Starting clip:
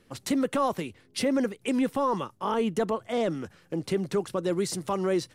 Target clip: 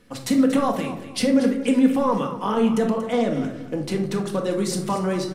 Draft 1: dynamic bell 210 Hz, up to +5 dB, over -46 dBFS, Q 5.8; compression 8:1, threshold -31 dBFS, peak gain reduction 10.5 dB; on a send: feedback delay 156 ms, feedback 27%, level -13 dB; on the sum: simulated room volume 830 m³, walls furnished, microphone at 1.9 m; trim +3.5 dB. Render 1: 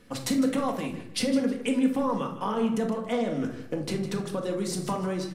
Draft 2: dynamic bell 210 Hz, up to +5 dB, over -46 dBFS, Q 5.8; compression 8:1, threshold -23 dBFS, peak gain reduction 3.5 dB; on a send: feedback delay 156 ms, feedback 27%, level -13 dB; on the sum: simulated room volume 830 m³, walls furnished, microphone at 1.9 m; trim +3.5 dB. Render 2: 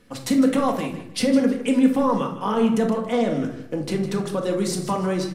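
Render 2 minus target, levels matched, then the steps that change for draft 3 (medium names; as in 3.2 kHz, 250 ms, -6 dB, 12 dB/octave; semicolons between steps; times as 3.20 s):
echo 78 ms early
change: feedback delay 234 ms, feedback 27%, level -13 dB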